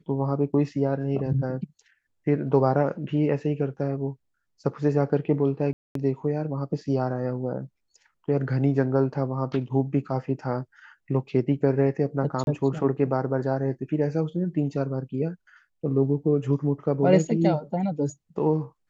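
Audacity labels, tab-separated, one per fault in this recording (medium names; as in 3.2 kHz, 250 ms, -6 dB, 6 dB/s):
5.730000	5.950000	dropout 223 ms
12.440000	12.470000	dropout 31 ms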